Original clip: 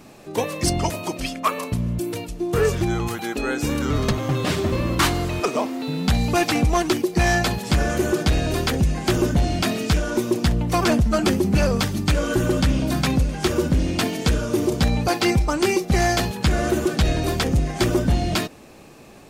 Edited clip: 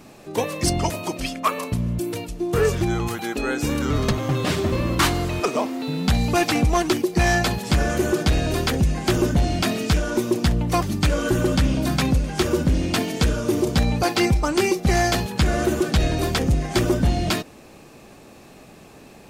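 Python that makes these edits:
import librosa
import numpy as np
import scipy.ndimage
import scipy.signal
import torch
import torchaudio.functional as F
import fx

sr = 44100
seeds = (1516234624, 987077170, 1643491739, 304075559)

y = fx.edit(x, sr, fx.cut(start_s=10.82, length_s=1.05), tone=tone)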